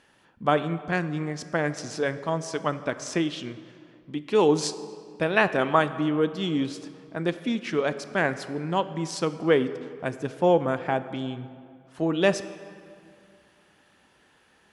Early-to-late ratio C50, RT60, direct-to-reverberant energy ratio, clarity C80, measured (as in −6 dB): 13.0 dB, 2.3 s, 12.0 dB, 14.0 dB